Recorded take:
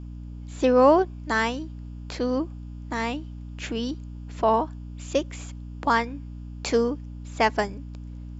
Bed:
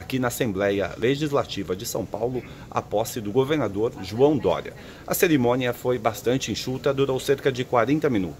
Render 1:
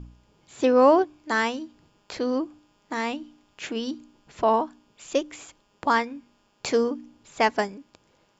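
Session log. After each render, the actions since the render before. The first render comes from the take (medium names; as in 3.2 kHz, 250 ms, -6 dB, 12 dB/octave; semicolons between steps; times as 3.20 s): de-hum 60 Hz, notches 5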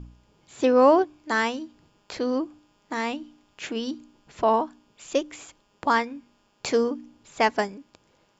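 no audible change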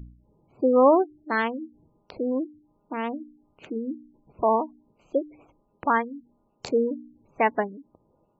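local Wiener filter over 25 samples; spectral gate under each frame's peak -20 dB strong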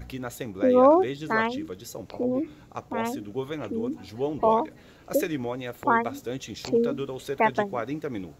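add bed -10.5 dB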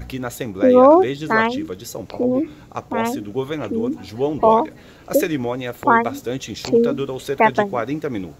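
trim +7.5 dB; peak limiter -1 dBFS, peak gain reduction 2 dB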